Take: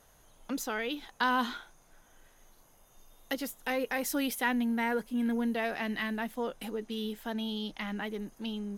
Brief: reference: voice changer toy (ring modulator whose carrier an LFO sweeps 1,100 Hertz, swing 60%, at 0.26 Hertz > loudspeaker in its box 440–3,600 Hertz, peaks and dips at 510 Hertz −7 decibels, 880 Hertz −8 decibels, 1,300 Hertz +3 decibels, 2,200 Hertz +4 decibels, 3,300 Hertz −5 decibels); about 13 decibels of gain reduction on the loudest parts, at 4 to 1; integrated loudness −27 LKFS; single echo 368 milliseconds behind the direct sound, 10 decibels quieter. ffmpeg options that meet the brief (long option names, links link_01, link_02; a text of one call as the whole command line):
ffmpeg -i in.wav -af "acompressor=threshold=-40dB:ratio=4,aecho=1:1:368:0.316,aeval=exprs='val(0)*sin(2*PI*1100*n/s+1100*0.6/0.26*sin(2*PI*0.26*n/s))':channel_layout=same,highpass=440,equalizer=frequency=510:width_type=q:width=4:gain=-7,equalizer=frequency=880:width_type=q:width=4:gain=-8,equalizer=frequency=1300:width_type=q:width=4:gain=3,equalizer=frequency=2200:width_type=q:width=4:gain=4,equalizer=frequency=3300:width_type=q:width=4:gain=-5,lowpass=frequency=3600:width=0.5412,lowpass=frequency=3600:width=1.3066,volume=17.5dB" out.wav